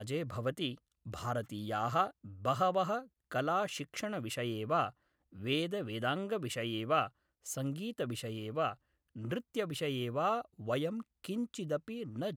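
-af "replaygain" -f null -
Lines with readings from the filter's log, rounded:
track_gain = +15.6 dB
track_peak = 0.103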